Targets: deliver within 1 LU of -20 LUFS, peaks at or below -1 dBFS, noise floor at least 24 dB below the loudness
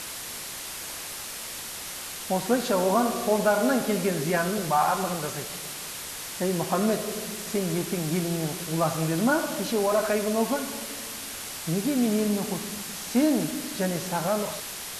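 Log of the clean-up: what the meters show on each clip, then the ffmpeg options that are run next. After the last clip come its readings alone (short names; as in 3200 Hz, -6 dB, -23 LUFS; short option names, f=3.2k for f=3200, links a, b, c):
noise floor -37 dBFS; noise floor target -51 dBFS; loudness -27.0 LUFS; peak -11.0 dBFS; loudness target -20.0 LUFS
-> -af "afftdn=nr=14:nf=-37"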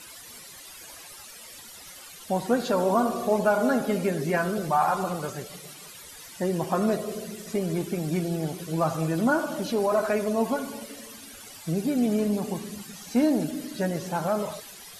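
noise floor -45 dBFS; noise floor target -51 dBFS
-> -af "afftdn=nr=6:nf=-45"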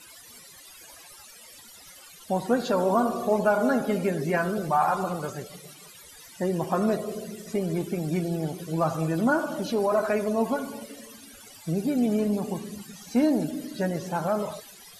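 noise floor -49 dBFS; noise floor target -51 dBFS
-> -af "afftdn=nr=6:nf=-49"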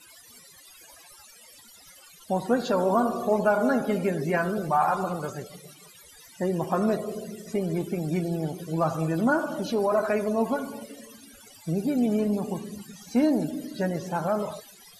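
noise floor -52 dBFS; loudness -27.0 LUFS; peak -11.5 dBFS; loudness target -20.0 LUFS
-> -af "volume=7dB"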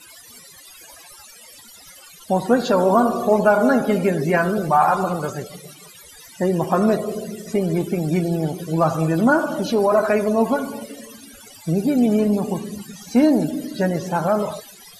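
loudness -20.0 LUFS; peak -4.5 dBFS; noise floor -45 dBFS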